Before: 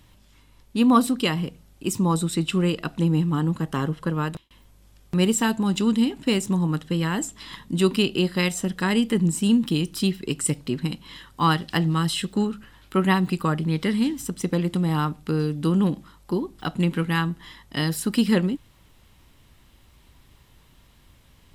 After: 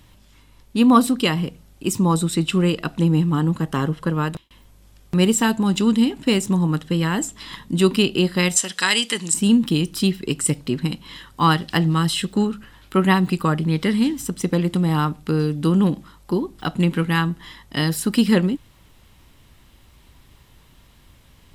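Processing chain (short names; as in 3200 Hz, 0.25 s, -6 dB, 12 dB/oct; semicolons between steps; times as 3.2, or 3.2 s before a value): 8.56–9.34 weighting filter ITU-R 468; gain +3.5 dB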